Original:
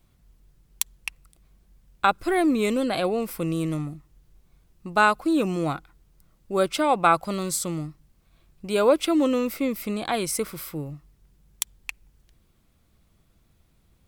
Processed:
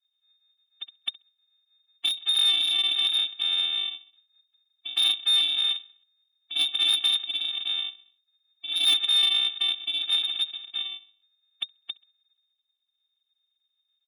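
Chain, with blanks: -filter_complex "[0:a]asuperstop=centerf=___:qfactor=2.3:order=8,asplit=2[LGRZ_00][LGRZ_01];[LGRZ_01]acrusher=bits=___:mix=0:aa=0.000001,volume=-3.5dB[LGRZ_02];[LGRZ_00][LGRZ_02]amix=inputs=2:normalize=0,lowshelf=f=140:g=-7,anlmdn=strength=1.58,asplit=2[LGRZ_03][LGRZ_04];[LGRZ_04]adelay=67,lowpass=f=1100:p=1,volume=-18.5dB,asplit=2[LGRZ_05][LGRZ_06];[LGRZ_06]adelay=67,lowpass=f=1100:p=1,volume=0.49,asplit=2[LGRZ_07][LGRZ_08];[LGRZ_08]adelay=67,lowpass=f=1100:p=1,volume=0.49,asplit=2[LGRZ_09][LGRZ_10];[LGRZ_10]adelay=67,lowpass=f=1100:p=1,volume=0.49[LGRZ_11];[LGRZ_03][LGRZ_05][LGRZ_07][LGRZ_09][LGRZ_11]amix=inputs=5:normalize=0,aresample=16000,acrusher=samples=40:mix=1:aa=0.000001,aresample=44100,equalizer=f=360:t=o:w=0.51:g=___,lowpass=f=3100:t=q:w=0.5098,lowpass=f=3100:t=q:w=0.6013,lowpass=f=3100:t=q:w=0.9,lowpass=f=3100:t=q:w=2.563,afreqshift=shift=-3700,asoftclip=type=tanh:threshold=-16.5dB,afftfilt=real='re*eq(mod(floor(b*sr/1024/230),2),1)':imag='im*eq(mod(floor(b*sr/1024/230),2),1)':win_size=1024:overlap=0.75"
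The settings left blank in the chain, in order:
1400, 7, -12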